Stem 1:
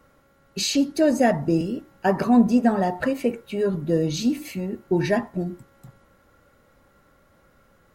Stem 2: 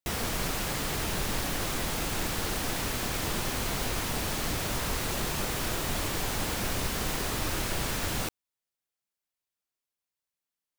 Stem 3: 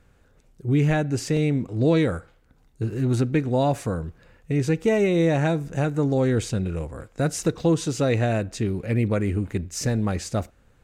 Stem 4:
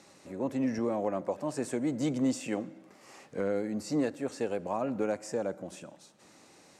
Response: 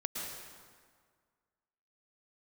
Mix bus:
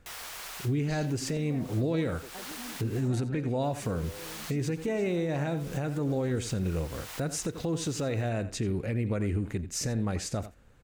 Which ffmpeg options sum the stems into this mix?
-filter_complex "[0:a]lowpass=10000,adelay=300,volume=-18dB[link_01];[1:a]highpass=850,volume=-7dB,asplit=3[link_02][link_03][link_04];[link_02]atrim=end=3.08,asetpts=PTS-STARTPTS,afade=type=out:start_time=3.076:duration=0.004:curve=hsin[link_05];[link_03]atrim=start=3.08:end=3.63,asetpts=PTS-STARTPTS,volume=0[link_06];[link_04]atrim=start=3.63,asetpts=PTS-STARTPTS,afade=type=in:duration=0.004:curve=hsin[link_07];[link_05][link_06][link_07]concat=n=3:v=0:a=1[link_08];[2:a]volume=-1dB,asplit=3[link_09][link_10][link_11];[link_10]volume=-20.5dB[link_12];[3:a]asplit=2[link_13][link_14];[link_14]afreqshift=-0.55[link_15];[link_13][link_15]amix=inputs=2:normalize=1,adelay=650,volume=-7dB[link_16];[link_11]apad=whole_len=475547[link_17];[link_08][link_17]sidechaincompress=threshold=-37dB:ratio=4:attack=16:release=279[link_18];[link_01][link_16]amix=inputs=2:normalize=0,acompressor=threshold=-43dB:ratio=6,volume=0dB[link_19];[link_18][link_09]amix=inputs=2:normalize=0,alimiter=limit=-22.5dB:level=0:latency=1:release=127,volume=0dB[link_20];[link_12]aecho=0:1:86:1[link_21];[link_19][link_20][link_21]amix=inputs=3:normalize=0"

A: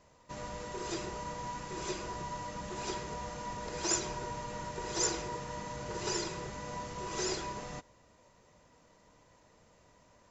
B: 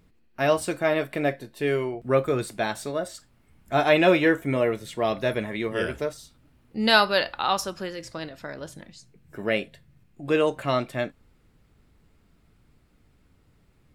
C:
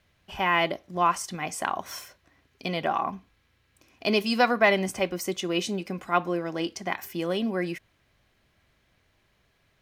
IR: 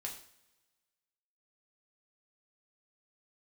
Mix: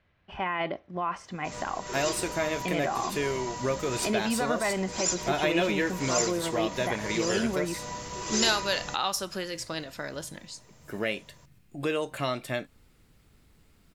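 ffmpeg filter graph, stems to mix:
-filter_complex "[0:a]adelay=1150,volume=2dB[link_01];[1:a]acompressor=threshold=-29dB:ratio=2.5,adelay=1550,volume=-0.5dB[link_02];[2:a]lowpass=1900,alimiter=limit=-20dB:level=0:latency=1:release=20,volume=-1.5dB,asplit=2[link_03][link_04];[link_04]apad=whole_len=505120[link_05];[link_01][link_05]sidechaincompress=threshold=-33dB:ratio=8:attack=16:release=241[link_06];[link_06][link_02][link_03]amix=inputs=3:normalize=0,highshelf=frequency=2800:gain=8.5"

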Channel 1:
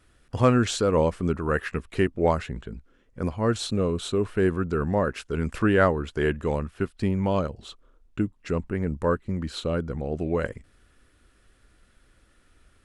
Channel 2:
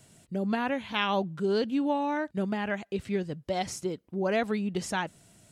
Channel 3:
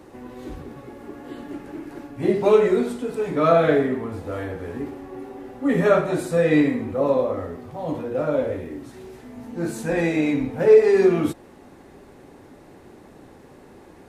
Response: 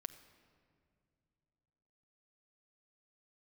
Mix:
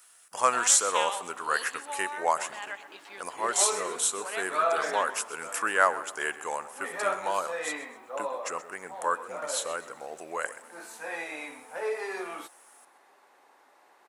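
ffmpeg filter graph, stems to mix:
-filter_complex "[0:a]aexciter=amount=6.5:drive=5.8:freq=5800,volume=-4dB,asplit=3[link_01][link_02][link_03];[link_02]volume=-3.5dB[link_04];[link_03]volume=-13.5dB[link_05];[1:a]equalizer=frequency=3900:width=0.53:gain=8,volume=-9.5dB,asplit=2[link_06][link_07];[link_07]volume=-16.5dB[link_08];[2:a]adelay=1150,volume=-8dB[link_09];[3:a]atrim=start_sample=2205[link_10];[link_04][link_10]afir=irnorm=-1:irlink=0[link_11];[link_05][link_08]amix=inputs=2:normalize=0,aecho=0:1:128|256|384|512|640:1|0.38|0.144|0.0549|0.0209[link_12];[link_01][link_06][link_09][link_11][link_12]amix=inputs=5:normalize=0,highpass=frequency=930:width_type=q:width=1.5"

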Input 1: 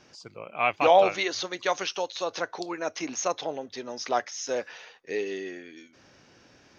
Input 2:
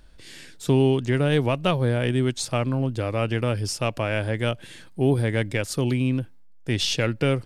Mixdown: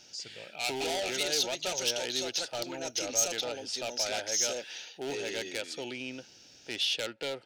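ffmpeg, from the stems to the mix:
ffmpeg -i stem1.wav -i stem2.wav -filter_complex "[0:a]asoftclip=type=tanh:threshold=-21.5dB,volume=-6.5dB[link_01];[1:a]lowpass=1900,asoftclip=type=hard:threshold=-14dB,highpass=580,volume=-3.5dB[link_02];[link_01][link_02]amix=inputs=2:normalize=0,asoftclip=type=tanh:threshold=-29.5dB,aexciter=amount=5.1:drive=4.3:freq=2700,asuperstop=centerf=1100:order=4:qfactor=3.6" out.wav

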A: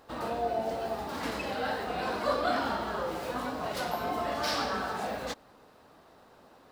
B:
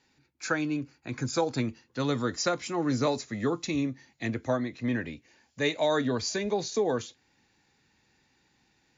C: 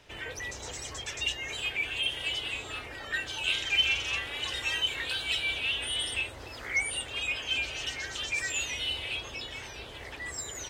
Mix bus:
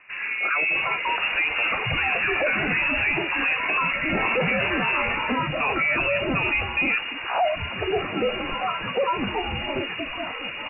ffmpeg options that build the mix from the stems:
ffmpeg -i stem1.wav -i stem2.wav -i stem3.wav -filter_complex "[0:a]volume=-2.5dB[link_01];[1:a]lowshelf=frequency=290:gain=-9.5,volume=2.5dB[link_02];[2:a]acontrast=75,adelay=650,volume=-1.5dB[link_03];[link_01][link_02][link_03]amix=inputs=3:normalize=0,acontrast=88,lowpass=frequency=2500:width_type=q:width=0.5098,lowpass=frequency=2500:width_type=q:width=0.6013,lowpass=frequency=2500:width_type=q:width=0.9,lowpass=frequency=2500:width_type=q:width=2.563,afreqshift=-2900,alimiter=limit=-15dB:level=0:latency=1:release=14" out.wav

